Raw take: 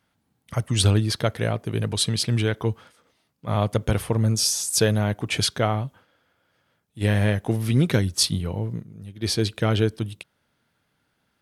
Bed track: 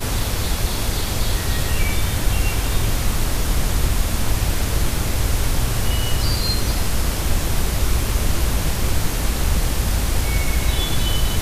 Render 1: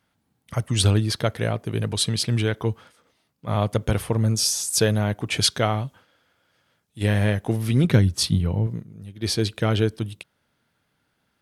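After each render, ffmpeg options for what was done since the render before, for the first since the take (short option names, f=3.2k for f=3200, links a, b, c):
-filter_complex "[0:a]asettb=1/sr,asplit=3[a][b][c];[a]atrim=end=5.444[d];[b]atrim=start=5.44:end=7.03,asetpts=PTS-STARTPTS,afade=t=in:d=0.004:c=qsin,afade=t=out:st=1.586:d=0.004:c=qsin,equalizer=f=6k:t=o:w=2.6:g=5[e];[c]atrim=start=7.026[f];[d][e]acrossfade=d=0.004:c1=hsin:c2=qsin[g];[g][f]acrossfade=d=0.004:c1=qsin:c2=hsin,asettb=1/sr,asplit=3[h][i][j];[h]atrim=end=7.844[k];[i]atrim=start=7.84:end=8.67,asetpts=PTS-STARTPTS,afade=t=in:d=0.004:c=qsin,afade=t=out:st=0.826:d=0.004:c=qsin,bass=f=250:g=6,treble=f=4k:g=-4[l];[j]atrim=start=8.666[m];[k][l]acrossfade=d=0.004:c1=hsin:c2=qsin[n];[n][m]acrossfade=d=0.004:c1=qsin:c2=hsin"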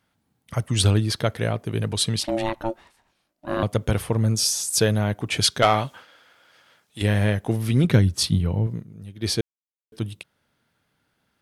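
-filter_complex "[0:a]asettb=1/sr,asplit=3[a][b][c];[a]atrim=end=2.204[d];[b]atrim=start=2.2:end=3.63,asetpts=PTS-STARTPTS,afade=t=in:d=0.004:c=qsin,afade=t=out:st=1.426:d=0.004:c=qsin,aeval=exprs='val(0)*sin(2*PI*450*n/s)':c=same[e];[c]atrim=start=3.626[f];[d][e]acrossfade=d=0.004:c1=hsin:c2=qsin[g];[g][f]acrossfade=d=0.004:c1=qsin:c2=hsin,asettb=1/sr,asplit=3[h][i][j];[h]atrim=end=5.624[k];[i]atrim=start=5.62:end=7.02,asetpts=PTS-STARTPTS,afade=t=in:d=0.004:c=qsin,afade=t=out:st=1.396:d=0.004:c=qsin,asplit=2[l][m];[m]highpass=f=720:p=1,volume=17dB,asoftclip=type=tanh:threshold=-4.5dB[n];[l][n]amix=inputs=2:normalize=0,lowpass=f=6.9k:p=1,volume=-6dB[o];[j]atrim=start=7.016[p];[k][o]acrossfade=d=0.004:c1=hsin:c2=qsin[q];[q][p]acrossfade=d=0.004:c1=qsin:c2=hsin,asplit=3[r][s][t];[r]atrim=end=9.41,asetpts=PTS-STARTPTS,afade=t=out:st=9.406:d=0.004:c=hsin[u];[s]atrim=start=9.41:end=9.92,asetpts=PTS-STARTPTS,volume=0[v];[t]atrim=start=9.92,asetpts=PTS-STARTPTS,afade=t=in:d=0.004:c=hsin[w];[u][v][w]concat=n=3:v=0:a=1"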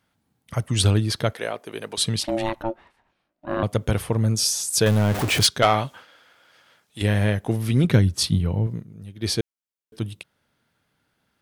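-filter_complex "[0:a]asettb=1/sr,asplit=3[a][b][c];[a]atrim=end=1.334[d];[b]atrim=start=1.33:end=1.98,asetpts=PTS-STARTPTS,afade=t=in:d=0.004:c=qsin,afade=t=out:st=0.646:d=0.004:c=qsin,highpass=410[e];[c]atrim=start=1.976[f];[d][e]acrossfade=d=0.004:c1=hsin:c2=qsin[g];[g][f]acrossfade=d=0.004:c1=qsin:c2=hsin,asettb=1/sr,asplit=3[h][i][j];[h]atrim=end=2.624[k];[i]atrim=start=2.62:end=3.64,asetpts=PTS-STARTPTS,afade=t=in:d=0.004:c=qsin,afade=t=out:st=1.016:d=0.004:c=qsin,bass=f=250:g=-1,treble=f=4k:g=-14[l];[j]atrim=start=3.636[m];[k][l]acrossfade=d=0.004:c1=hsin:c2=qsin[n];[n][m]acrossfade=d=0.004:c1=qsin:c2=hsin,asettb=1/sr,asplit=3[o][p][q];[o]atrim=end=4.864[r];[p]atrim=start=4.86:end=5.47,asetpts=PTS-STARTPTS,afade=t=in:d=0.004:c=qsin,afade=t=out:st=0.606:d=0.004:c=qsin,aeval=exprs='val(0)+0.5*0.0841*sgn(val(0))':c=same[s];[q]atrim=start=5.466[t];[r][s]acrossfade=d=0.004:c1=hsin:c2=qsin[u];[u][t]acrossfade=d=0.004:c1=qsin:c2=hsin"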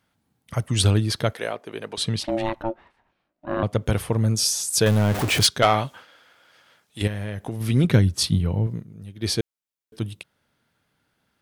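-filter_complex "[0:a]asettb=1/sr,asplit=3[a][b][c];[a]atrim=end=1.544[d];[b]atrim=start=1.54:end=3.86,asetpts=PTS-STARTPTS,afade=t=in:d=0.004:c=qsin,afade=t=out:st=2.316:d=0.004:c=qsin,lowpass=f=4k:p=1[e];[c]atrim=start=3.856[f];[d][e]acrossfade=d=0.004:c1=hsin:c2=qsin[g];[g][f]acrossfade=d=0.004:c1=qsin:c2=hsin,asettb=1/sr,asplit=3[h][i][j];[h]atrim=end=7.074[k];[i]atrim=start=7.07:end=7.61,asetpts=PTS-STARTPTS,afade=t=in:d=0.004:c=qsin,afade=t=out:st=0.536:d=0.004:c=qsin,acompressor=threshold=-25dB:ratio=6:attack=3.2:release=140:knee=1:detection=peak[l];[j]atrim=start=7.606[m];[k][l]acrossfade=d=0.004:c1=hsin:c2=qsin[n];[n][m]acrossfade=d=0.004:c1=qsin:c2=hsin"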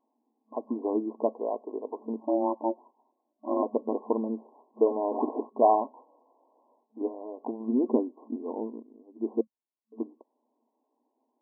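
-af "afftfilt=real='re*between(b*sr/4096,220,1100)':imag='im*between(b*sr/4096,220,1100)':win_size=4096:overlap=0.75,bandreject=f=530:w=12"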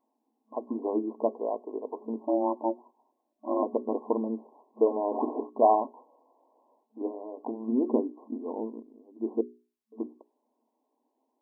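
-af "bandreject=f=60:t=h:w=6,bandreject=f=120:t=h:w=6,bandreject=f=180:t=h:w=6,bandreject=f=240:t=h:w=6,bandreject=f=300:t=h:w=6,bandreject=f=360:t=h:w=6,bandreject=f=420:t=h:w=6"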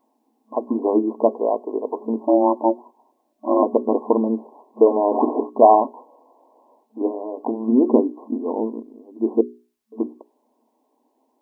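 -af "volume=10.5dB,alimiter=limit=-2dB:level=0:latency=1"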